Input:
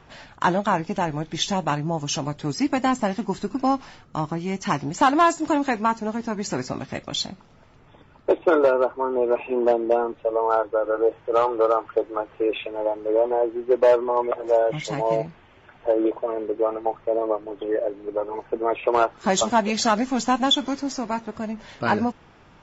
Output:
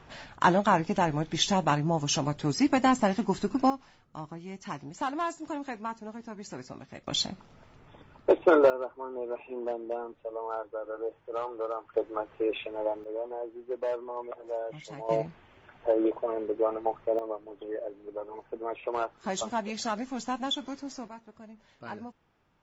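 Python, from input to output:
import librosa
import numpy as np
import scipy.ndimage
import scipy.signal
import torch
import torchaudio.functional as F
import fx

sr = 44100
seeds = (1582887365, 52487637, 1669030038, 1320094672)

y = fx.gain(x, sr, db=fx.steps((0.0, -1.5), (3.7, -14.0), (7.07, -2.0), (8.7, -14.0), (11.94, -6.0), (13.04, -15.0), (15.09, -4.5), (17.19, -11.5), (21.08, -19.0)))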